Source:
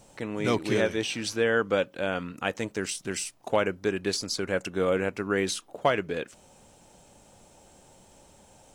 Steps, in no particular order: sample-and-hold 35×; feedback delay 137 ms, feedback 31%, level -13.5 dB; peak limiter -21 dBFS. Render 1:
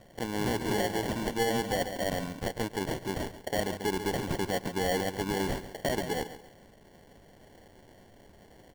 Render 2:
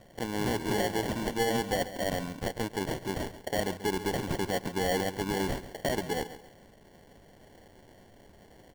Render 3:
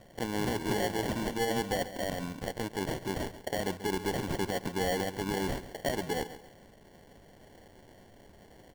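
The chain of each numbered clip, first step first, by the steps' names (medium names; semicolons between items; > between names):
sample-and-hold > feedback delay > peak limiter; sample-and-hold > peak limiter > feedback delay; peak limiter > sample-and-hold > feedback delay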